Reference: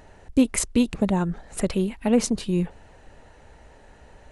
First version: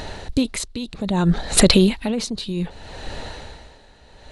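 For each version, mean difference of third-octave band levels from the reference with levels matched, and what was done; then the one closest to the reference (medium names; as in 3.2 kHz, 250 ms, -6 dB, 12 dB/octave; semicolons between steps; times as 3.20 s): 6.5 dB: peaking EQ 4 kHz +14 dB 0.64 oct; loudness maximiser +17 dB; logarithmic tremolo 0.63 Hz, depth 18 dB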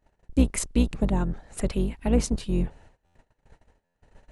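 4.0 dB: octave divider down 2 oct, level +2 dB; gate -44 dBFS, range -24 dB; buffer glitch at 3.05/3.84 s, samples 512; trim -4.5 dB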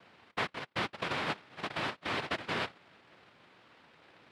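10.0 dB: peak limiter -19.5 dBFS, peak gain reduction 11 dB; noise-vocoded speech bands 1; distance through air 430 m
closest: second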